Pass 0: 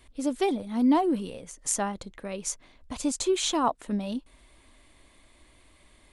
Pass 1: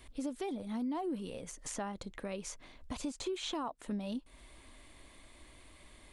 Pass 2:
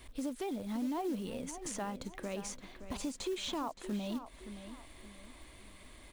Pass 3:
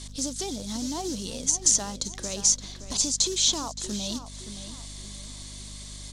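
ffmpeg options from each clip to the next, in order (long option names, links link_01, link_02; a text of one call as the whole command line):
ffmpeg -i in.wav -filter_complex "[0:a]acrossover=split=4000[link_01][link_02];[link_02]acompressor=threshold=-41dB:ratio=4:attack=1:release=60[link_03];[link_01][link_03]amix=inputs=2:normalize=0,alimiter=limit=-22.5dB:level=0:latency=1:release=265,acompressor=threshold=-42dB:ratio=2,volume=1dB" out.wav
ffmpeg -i in.wav -filter_complex "[0:a]asplit=2[link_01][link_02];[link_02]alimiter=level_in=11.5dB:limit=-24dB:level=0:latency=1,volume=-11.5dB,volume=-2dB[link_03];[link_01][link_03]amix=inputs=2:normalize=0,acrusher=bits=5:mode=log:mix=0:aa=0.000001,asplit=2[link_04][link_05];[link_05]adelay=570,lowpass=frequency=4200:poles=1,volume=-11dB,asplit=2[link_06][link_07];[link_07]adelay=570,lowpass=frequency=4200:poles=1,volume=0.38,asplit=2[link_08][link_09];[link_09]adelay=570,lowpass=frequency=4200:poles=1,volume=0.38,asplit=2[link_10][link_11];[link_11]adelay=570,lowpass=frequency=4200:poles=1,volume=0.38[link_12];[link_04][link_06][link_08][link_10][link_12]amix=inputs=5:normalize=0,volume=-3dB" out.wav
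ffmpeg -i in.wav -af "lowpass=frequency=6200:width_type=q:width=2.3,aexciter=amount=5.7:drive=4.9:freq=3500,aeval=exprs='val(0)+0.00562*(sin(2*PI*50*n/s)+sin(2*PI*2*50*n/s)/2+sin(2*PI*3*50*n/s)/3+sin(2*PI*4*50*n/s)/4+sin(2*PI*5*50*n/s)/5)':channel_layout=same,volume=3dB" out.wav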